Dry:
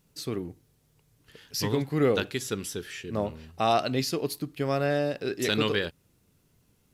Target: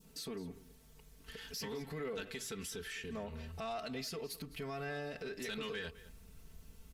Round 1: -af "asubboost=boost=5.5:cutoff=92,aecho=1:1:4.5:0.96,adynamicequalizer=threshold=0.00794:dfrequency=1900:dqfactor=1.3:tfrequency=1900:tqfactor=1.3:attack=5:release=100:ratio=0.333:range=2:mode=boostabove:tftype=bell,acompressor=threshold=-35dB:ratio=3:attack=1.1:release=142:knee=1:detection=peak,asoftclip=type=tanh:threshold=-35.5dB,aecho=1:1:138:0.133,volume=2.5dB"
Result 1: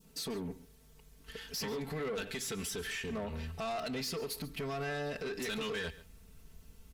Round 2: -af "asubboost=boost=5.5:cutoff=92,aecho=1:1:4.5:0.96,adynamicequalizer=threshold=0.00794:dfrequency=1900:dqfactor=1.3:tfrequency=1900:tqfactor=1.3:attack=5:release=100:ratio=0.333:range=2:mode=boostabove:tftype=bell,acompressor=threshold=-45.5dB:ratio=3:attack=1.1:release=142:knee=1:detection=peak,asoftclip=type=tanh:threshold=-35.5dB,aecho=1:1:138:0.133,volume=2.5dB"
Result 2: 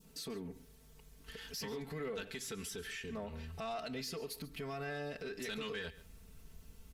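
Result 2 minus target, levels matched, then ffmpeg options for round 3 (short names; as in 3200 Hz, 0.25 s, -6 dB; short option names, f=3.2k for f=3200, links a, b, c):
echo 72 ms early
-af "asubboost=boost=5.5:cutoff=92,aecho=1:1:4.5:0.96,adynamicequalizer=threshold=0.00794:dfrequency=1900:dqfactor=1.3:tfrequency=1900:tqfactor=1.3:attack=5:release=100:ratio=0.333:range=2:mode=boostabove:tftype=bell,acompressor=threshold=-45.5dB:ratio=3:attack=1.1:release=142:knee=1:detection=peak,asoftclip=type=tanh:threshold=-35.5dB,aecho=1:1:210:0.133,volume=2.5dB"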